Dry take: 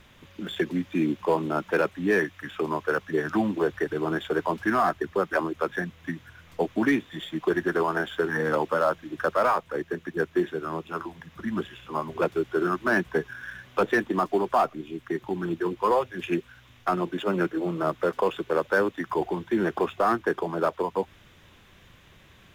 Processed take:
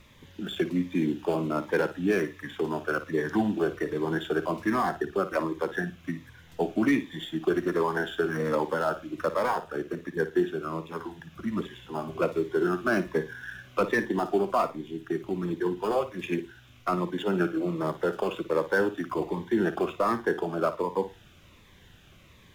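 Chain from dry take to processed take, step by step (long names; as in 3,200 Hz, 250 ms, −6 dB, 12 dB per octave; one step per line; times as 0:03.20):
flutter between parallel walls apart 9.6 metres, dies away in 0.27 s
phaser whose notches keep moving one way falling 1.3 Hz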